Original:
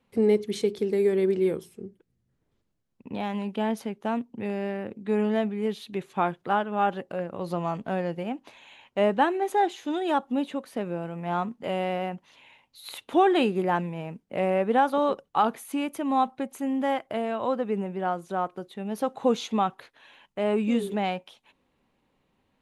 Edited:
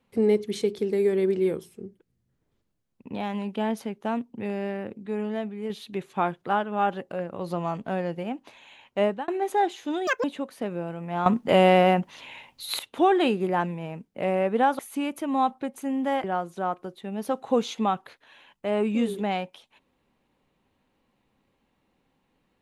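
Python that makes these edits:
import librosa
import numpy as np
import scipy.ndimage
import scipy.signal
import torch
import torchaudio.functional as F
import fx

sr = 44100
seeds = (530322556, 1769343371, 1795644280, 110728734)

y = fx.edit(x, sr, fx.clip_gain(start_s=5.06, length_s=0.64, db=-5.0),
    fx.fade_out_span(start_s=9.03, length_s=0.25),
    fx.speed_span(start_s=10.07, length_s=0.32, speed=1.89),
    fx.clip_gain(start_s=11.41, length_s=1.53, db=11.0),
    fx.cut(start_s=14.94, length_s=0.62),
    fx.cut(start_s=17.01, length_s=0.96), tone=tone)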